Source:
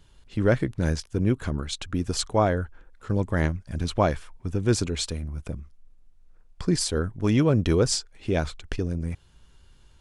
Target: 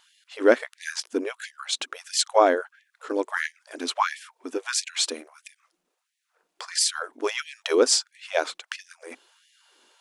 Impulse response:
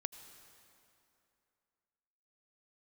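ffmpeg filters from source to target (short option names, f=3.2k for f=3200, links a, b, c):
-af "asubboost=boost=10.5:cutoff=56,afftfilt=real='re*gte(b*sr/1024,230*pow(1700/230,0.5+0.5*sin(2*PI*1.5*pts/sr)))':imag='im*gte(b*sr/1024,230*pow(1700/230,0.5+0.5*sin(2*PI*1.5*pts/sr)))':win_size=1024:overlap=0.75,volume=5.5dB"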